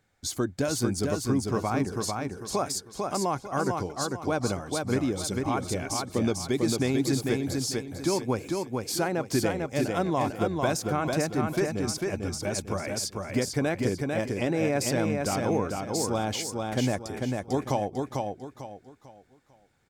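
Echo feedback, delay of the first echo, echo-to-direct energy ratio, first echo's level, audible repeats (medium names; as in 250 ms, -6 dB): 32%, 447 ms, -3.0 dB, -3.5 dB, 4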